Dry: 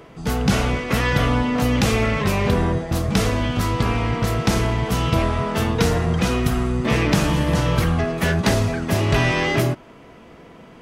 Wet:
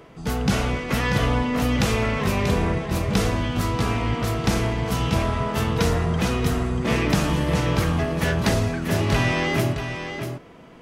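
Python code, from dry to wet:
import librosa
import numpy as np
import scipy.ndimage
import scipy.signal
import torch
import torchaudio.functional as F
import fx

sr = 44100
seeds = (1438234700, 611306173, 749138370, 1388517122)

y = x + 10.0 ** (-8.0 / 20.0) * np.pad(x, (int(637 * sr / 1000.0), 0))[:len(x)]
y = y * librosa.db_to_amplitude(-3.0)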